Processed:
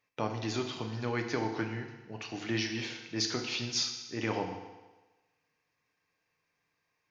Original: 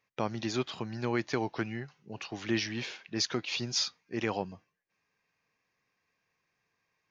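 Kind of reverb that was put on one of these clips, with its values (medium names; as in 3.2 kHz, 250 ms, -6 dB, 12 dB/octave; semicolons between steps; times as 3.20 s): FDN reverb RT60 1.2 s, low-frequency decay 0.8×, high-frequency decay 1×, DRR 3 dB; trim -2 dB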